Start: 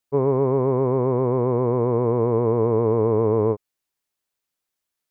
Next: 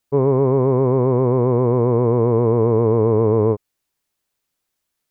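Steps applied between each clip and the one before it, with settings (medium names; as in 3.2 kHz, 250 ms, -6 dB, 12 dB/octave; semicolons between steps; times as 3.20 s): in parallel at +1.5 dB: peak limiter -19 dBFS, peak gain reduction 9.5 dB; on the sum: bass shelf 290 Hz +4.5 dB; trim -1.5 dB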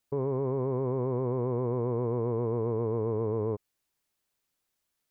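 peak limiter -17.5 dBFS, peak gain reduction 11 dB; trim -4 dB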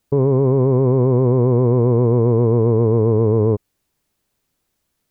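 bass shelf 490 Hz +10 dB; trim +7.5 dB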